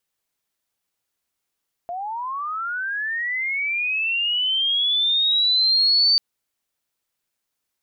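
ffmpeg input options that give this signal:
-f lavfi -i "aevalsrc='pow(10,(-26.5+13*t/4.29)/20)*sin(2*PI*(680*t+3920*t*t/(2*4.29)))':d=4.29:s=44100"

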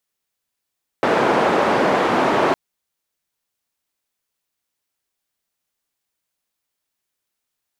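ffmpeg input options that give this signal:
-f lavfi -i "anoisesrc=c=white:d=1.51:r=44100:seed=1,highpass=f=240,lowpass=f=880,volume=2.7dB"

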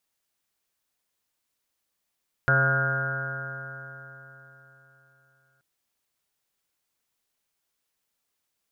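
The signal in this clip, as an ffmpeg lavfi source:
-f lavfi -i "aevalsrc='0.075*pow(10,-3*t/3.77)*sin(2*PI*134.09*t)+0.00944*pow(10,-3*t/3.77)*sin(2*PI*268.75*t)+0.0168*pow(10,-3*t/3.77)*sin(2*PI*404.52*t)+0.0316*pow(10,-3*t/3.77)*sin(2*PI*541.97*t)+0.0282*pow(10,-3*t/3.77)*sin(2*PI*681.62*t)+0.00944*pow(10,-3*t/3.77)*sin(2*PI*824.01*t)+0.00841*pow(10,-3*t/3.77)*sin(2*PI*969.64*t)+0.0106*pow(10,-3*t/3.77)*sin(2*PI*1119*t)+0.02*pow(10,-3*t/3.77)*sin(2*PI*1272.54*t)+0.106*pow(10,-3*t/3.77)*sin(2*PI*1430.73*t)+0.0596*pow(10,-3*t/3.77)*sin(2*PI*1593.97*t)+0.00794*pow(10,-3*t/3.77)*sin(2*PI*1762.65*t)':d=3.13:s=44100"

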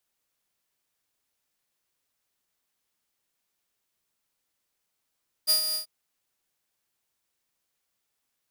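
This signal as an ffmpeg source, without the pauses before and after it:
-f lavfi -i "aevalsrc='0.168*(2*mod(4830*t,1)-1)':d=0.388:s=44100,afade=t=in:d=0.03,afade=t=out:st=0.03:d=0.111:silence=0.376,afade=t=out:st=0.28:d=0.108"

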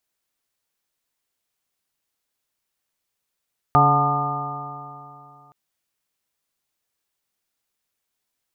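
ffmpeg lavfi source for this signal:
-f lavfi -i "aevalsrc='0.126*pow(10,-3*t/2.73)*sin(2*PI*141.18*t)+0.0562*pow(10,-3*t/2.73)*sin(2*PI*283.41*t)+0.0447*pow(10,-3*t/2.73)*sin(2*PI*427.73*t)+0.0282*pow(10,-3*t/2.73)*sin(2*PI*575.17*t)+0.141*pow(10,-3*t/2.73)*sin(2*PI*726.7*t)+0.126*pow(10,-3*t/2.73)*sin(2*PI*883.25*t)+0.0251*pow(10,-3*t/2.73)*sin(2*PI*1045.71*t)+0.2*pow(10,-3*t/2.73)*sin(2*PI*1214.89*t)':d=1.77:s=44100"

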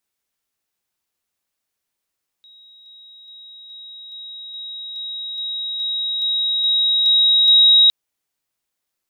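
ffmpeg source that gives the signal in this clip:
-f lavfi -i "aevalsrc='pow(10,(-44+3*floor(t/0.42))/20)*sin(2*PI*3810*t)':d=5.46:s=44100"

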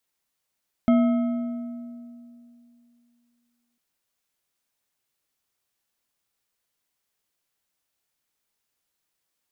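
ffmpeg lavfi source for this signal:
-f lavfi -i "aevalsrc='0.2*pow(10,-3*t/2.77)*sin(2*PI*239*t)+0.075*pow(10,-3*t/2.043)*sin(2*PI*658.9*t)+0.0282*pow(10,-3*t/1.67)*sin(2*PI*1291.6*t)+0.0106*pow(10,-3*t/1.436)*sin(2*PI*2135*t)+0.00398*pow(10,-3*t/1.273)*sin(2*PI*3188.3*t)':d=2.9:s=44100"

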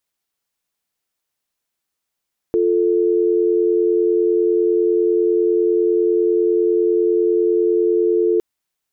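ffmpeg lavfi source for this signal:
-f lavfi -i "aevalsrc='0.158*(sin(2*PI*350*t)+sin(2*PI*440*t))':d=5.86:s=44100"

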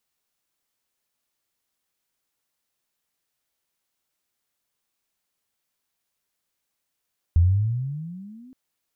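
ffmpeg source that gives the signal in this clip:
-f lavfi -i "aevalsrc='pow(10,(-12-32*t/1.17)/20)*sin(2*PI*81.2*1.17/(20.5*log(2)/12)*(exp(20.5*log(2)/12*t/1.17)-1))':d=1.17:s=44100"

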